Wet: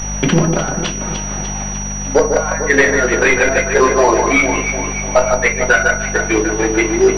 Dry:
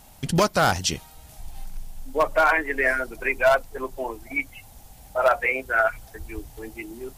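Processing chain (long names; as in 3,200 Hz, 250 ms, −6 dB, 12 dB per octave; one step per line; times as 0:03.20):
gain on one half-wave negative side −3 dB
high-pass filter 310 Hz 12 dB per octave
leveller curve on the samples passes 1
in parallel at −3 dB: output level in coarse steps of 19 dB
on the sum: gate with flip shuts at −10 dBFS, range −29 dB
mains hum 50 Hz, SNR 15 dB
soft clipping −20 dBFS, distortion −11 dB
delay that swaps between a low-pass and a high-pass 149 ms, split 1,900 Hz, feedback 74%, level −7 dB
rectangular room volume 140 cubic metres, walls furnished, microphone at 0.97 metres
boost into a limiter +19.5 dB
switching amplifier with a slow clock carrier 5,800 Hz
level −1 dB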